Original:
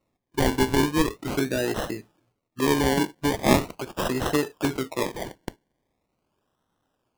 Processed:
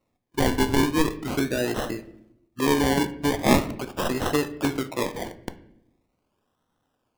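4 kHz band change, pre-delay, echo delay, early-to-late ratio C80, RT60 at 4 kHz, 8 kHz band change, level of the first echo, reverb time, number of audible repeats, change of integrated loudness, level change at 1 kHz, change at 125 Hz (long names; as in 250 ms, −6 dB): 0.0 dB, 4 ms, no echo audible, 18.0 dB, 0.55 s, 0.0 dB, no echo audible, 0.75 s, no echo audible, +0.5 dB, +0.5 dB, 0.0 dB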